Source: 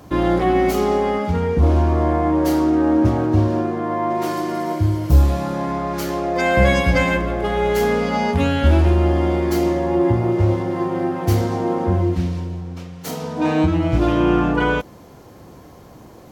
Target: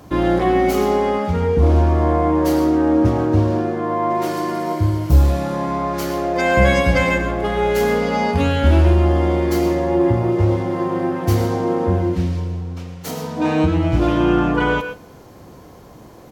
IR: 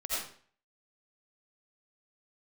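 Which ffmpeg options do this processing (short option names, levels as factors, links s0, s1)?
-filter_complex "[0:a]aecho=1:1:92|184|276:0.0668|0.0314|0.0148,asplit=2[s0][s1];[1:a]atrim=start_sample=2205,afade=t=out:st=0.16:d=0.01,atrim=end_sample=7497,asetrate=34398,aresample=44100[s2];[s1][s2]afir=irnorm=-1:irlink=0,volume=0.237[s3];[s0][s3]amix=inputs=2:normalize=0,volume=0.891"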